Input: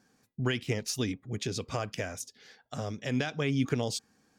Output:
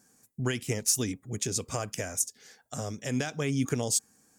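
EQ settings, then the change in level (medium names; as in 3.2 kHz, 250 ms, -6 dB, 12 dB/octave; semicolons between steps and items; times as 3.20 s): resonant high shelf 5.6 kHz +12 dB, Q 1.5; 0.0 dB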